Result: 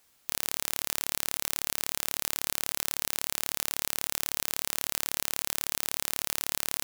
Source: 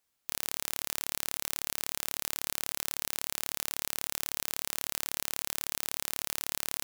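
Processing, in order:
boost into a limiter +14.5 dB
level −1 dB

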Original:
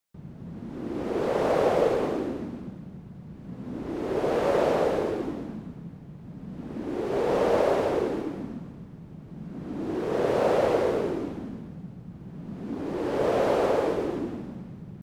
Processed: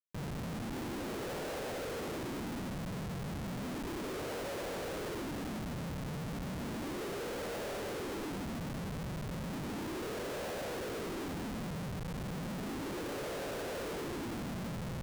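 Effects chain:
downward compressor 12 to 1, threshold −37 dBFS, peak gain reduction 19 dB
comparator with hysteresis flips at −48 dBFS
level +2 dB

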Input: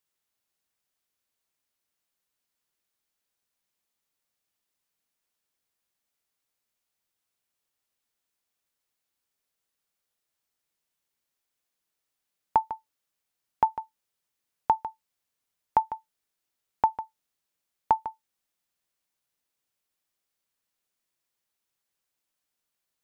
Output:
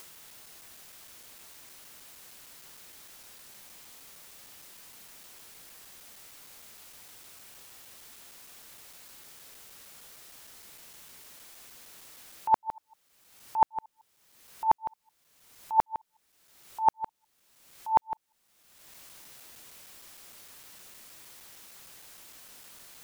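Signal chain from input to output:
reversed piece by piece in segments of 154 ms
upward compression, threshold −25 dBFS

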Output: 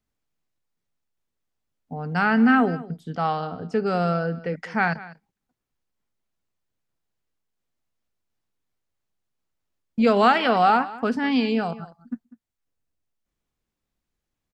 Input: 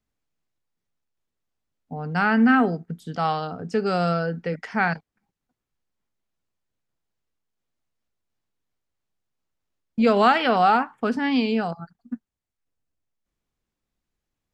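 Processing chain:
0:02.84–0:04.56: high-shelf EQ 3,800 Hz −9 dB
single-tap delay 197 ms −18 dB

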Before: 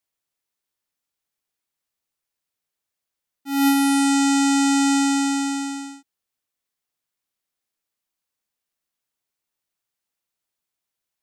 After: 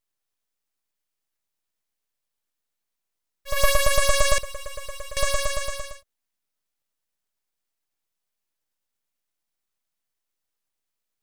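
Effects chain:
0:04.38–0:05.17: stiff-string resonator 250 Hz, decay 0.25 s, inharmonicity 0.008
auto-filter high-pass saw up 8.8 Hz 260–3,200 Hz
full-wave rectification
level +1.5 dB

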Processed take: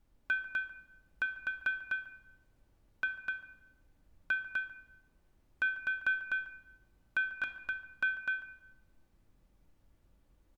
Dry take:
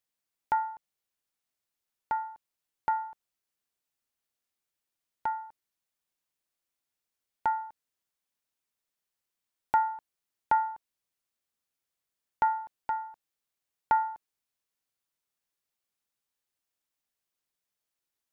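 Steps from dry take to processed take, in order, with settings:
brickwall limiter −22.5 dBFS, peak gain reduction 8.5 dB
notch comb filter 250 Hz
background noise brown −70 dBFS
single-tap delay 435 ms −3 dB
rectangular room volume 2,200 cubic metres, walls mixed, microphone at 0.73 metres
wrong playback speed 45 rpm record played at 78 rpm

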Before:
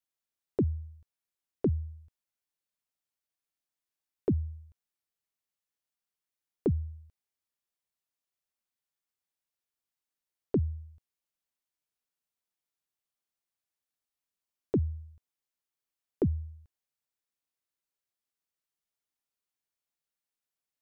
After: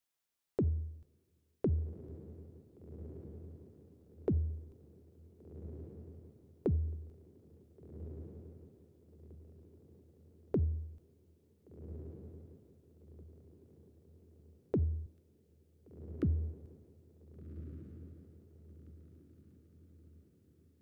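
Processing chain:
0:15.06–0:16.23: Butterworth high-pass 1,200 Hz 96 dB per octave
brickwall limiter −25.5 dBFS, peak gain reduction 6.5 dB
downward compressor, threshold −32 dBFS, peak gain reduction 4.5 dB
feedback delay with all-pass diffusion 1,523 ms, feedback 42%, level −12 dB
convolution reverb, pre-delay 3 ms, DRR 17.5 dB
level +3.5 dB

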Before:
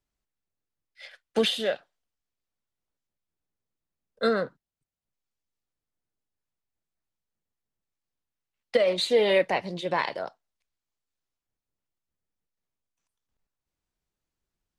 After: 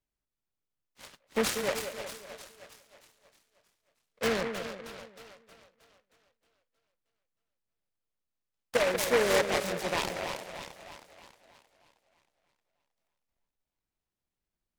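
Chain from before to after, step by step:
echo with a time of its own for lows and highs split 620 Hz, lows 187 ms, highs 314 ms, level −7 dB
short delay modulated by noise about 1,300 Hz, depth 0.16 ms
level −4.5 dB

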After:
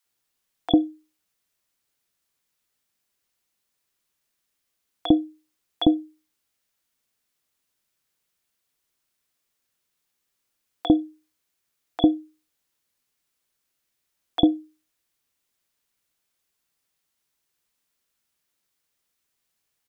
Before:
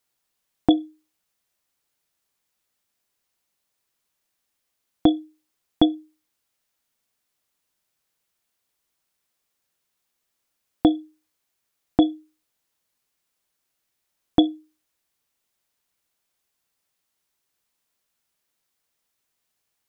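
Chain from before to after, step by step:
multiband delay without the direct sound highs, lows 50 ms, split 760 Hz

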